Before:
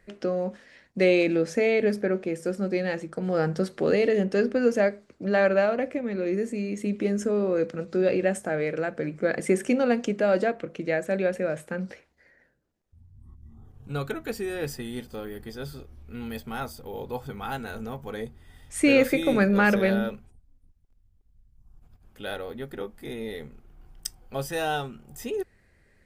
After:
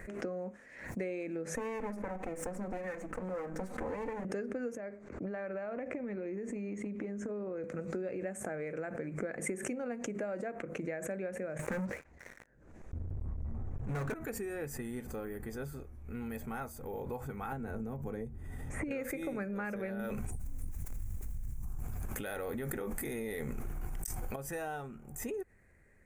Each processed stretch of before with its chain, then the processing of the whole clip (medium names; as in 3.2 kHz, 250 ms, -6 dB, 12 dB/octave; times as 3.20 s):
1.55–4.25 s: comb filter that takes the minimum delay 3.9 ms + treble shelf 5.2 kHz -4.5 dB
4.77–7.64 s: distance through air 87 m + compression, threshold -27 dBFS + tape noise reduction on one side only decoder only
11.59–14.14 s: low-pass 5.5 kHz + bass shelf 77 Hz +8 dB + waveshaping leveller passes 5
17.52–18.91 s: tilt shelf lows +7 dB, about 670 Hz + three bands compressed up and down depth 100%
19.99–24.36 s: treble shelf 3.2 kHz +10 dB + level flattener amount 100%
whole clip: compression, threshold -33 dBFS; high-order bell 3.9 kHz -13 dB 1.1 oct; swell ahead of each attack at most 72 dB/s; trim -3 dB